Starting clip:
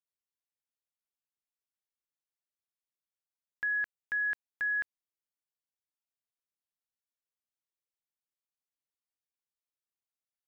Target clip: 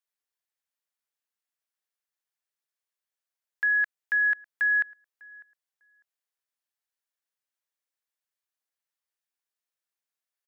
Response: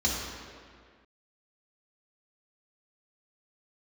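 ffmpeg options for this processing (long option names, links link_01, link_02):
-filter_complex "[0:a]highpass=450,equalizer=frequency=1700:width_type=o:width=0.43:gain=4.5,asplit=2[link_01][link_02];[link_02]adelay=600,lowpass=frequency=1600:poles=1,volume=-22dB,asplit=2[link_03][link_04];[link_04]adelay=600,lowpass=frequency=1600:poles=1,volume=0.21[link_05];[link_01][link_03][link_05]amix=inputs=3:normalize=0,volume=3dB"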